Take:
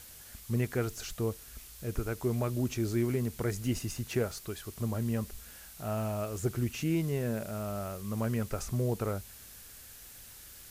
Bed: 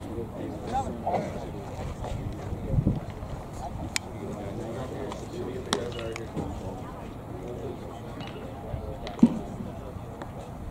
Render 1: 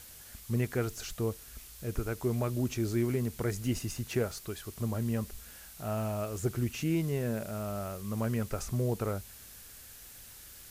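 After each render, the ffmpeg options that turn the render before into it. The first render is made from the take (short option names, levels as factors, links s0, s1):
-af anull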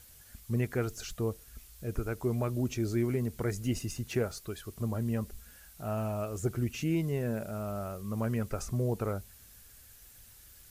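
-af "afftdn=nr=7:nf=-51"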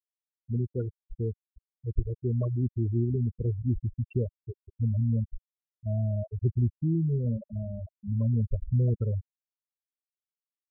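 -af "afftfilt=real='re*gte(hypot(re,im),0.1)':imag='im*gte(hypot(re,im),0.1)':win_size=1024:overlap=0.75,asubboost=boost=3.5:cutoff=180"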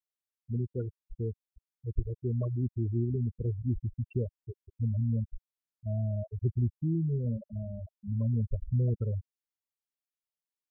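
-af "volume=0.708"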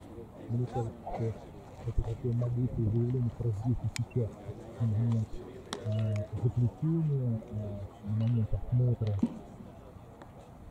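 -filter_complex "[1:a]volume=0.266[s0];[0:a][s0]amix=inputs=2:normalize=0"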